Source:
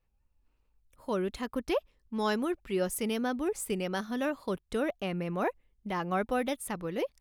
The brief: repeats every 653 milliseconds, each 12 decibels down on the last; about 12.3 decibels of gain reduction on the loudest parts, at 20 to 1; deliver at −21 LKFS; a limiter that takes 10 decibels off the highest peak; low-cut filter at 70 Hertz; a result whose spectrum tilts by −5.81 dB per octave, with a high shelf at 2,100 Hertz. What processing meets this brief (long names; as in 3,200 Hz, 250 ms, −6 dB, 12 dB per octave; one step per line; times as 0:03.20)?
high-pass filter 70 Hz
high-shelf EQ 2,100 Hz −9 dB
downward compressor 20 to 1, threshold −38 dBFS
brickwall limiter −38 dBFS
repeating echo 653 ms, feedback 25%, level −12 dB
level +25.5 dB